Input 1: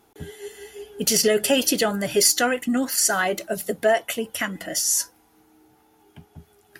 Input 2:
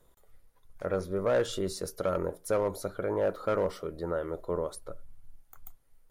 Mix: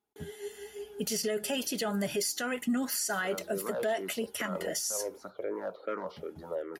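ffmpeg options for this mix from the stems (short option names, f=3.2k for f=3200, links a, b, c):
-filter_complex "[0:a]agate=range=-21dB:threshold=-55dB:ratio=16:detection=peak,aecho=1:1:4.8:0.36,volume=-6dB[a];[1:a]acrossover=split=210 5400:gain=0.0708 1 0.0891[b][c][d];[b][c][d]amix=inputs=3:normalize=0,asplit=2[e][f];[f]afreqshift=-2.6[g];[e][g]amix=inputs=2:normalize=1,adelay=2400,volume=-2dB[h];[a][h]amix=inputs=2:normalize=0,highpass=44,alimiter=limit=-22.5dB:level=0:latency=1:release=141"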